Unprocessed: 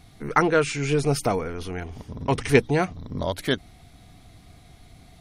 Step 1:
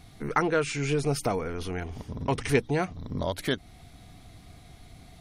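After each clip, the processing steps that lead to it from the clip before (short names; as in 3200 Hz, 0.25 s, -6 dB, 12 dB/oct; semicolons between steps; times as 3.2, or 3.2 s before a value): compressor 1.5:1, threshold -30 dBFS, peak gain reduction 7 dB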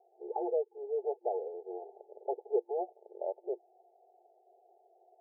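FFT band-pass 350–880 Hz; gain -4 dB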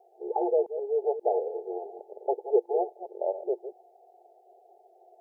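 reverse delay 0.133 s, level -11 dB; gain +7 dB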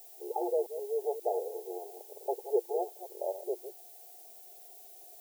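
added noise violet -47 dBFS; gain -5.5 dB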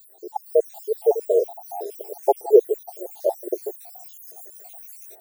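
random spectral dropouts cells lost 76%; AGC gain up to 10 dB; gain +6 dB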